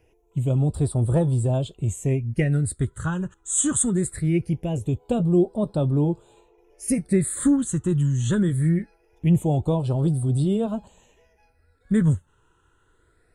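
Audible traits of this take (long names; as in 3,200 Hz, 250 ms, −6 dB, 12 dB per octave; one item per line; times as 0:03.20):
phaser sweep stages 8, 0.22 Hz, lowest notch 660–2,100 Hz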